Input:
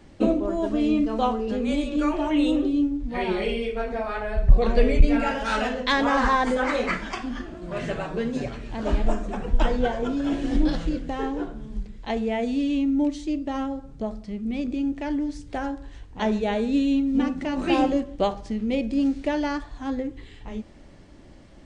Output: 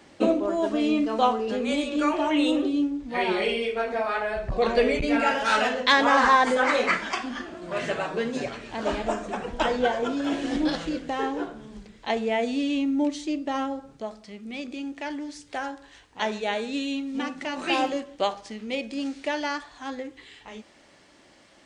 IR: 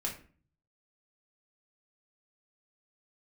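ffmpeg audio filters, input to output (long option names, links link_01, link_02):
-af "asetnsamples=nb_out_samples=441:pad=0,asendcmd='13.97 highpass f 1200',highpass=frequency=540:poles=1,volume=4.5dB"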